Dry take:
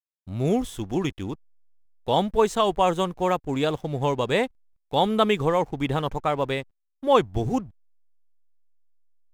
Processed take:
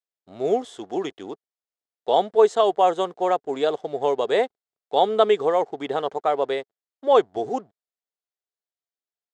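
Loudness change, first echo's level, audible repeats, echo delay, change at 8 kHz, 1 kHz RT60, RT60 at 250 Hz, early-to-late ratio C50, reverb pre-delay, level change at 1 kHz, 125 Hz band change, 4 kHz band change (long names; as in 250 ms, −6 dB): +2.0 dB, no echo audible, no echo audible, no echo audible, can't be measured, no reverb audible, no reverb audible, no reverb audible, no reverb audible, +2.0 dB, −16.5 dB, −1.5 dB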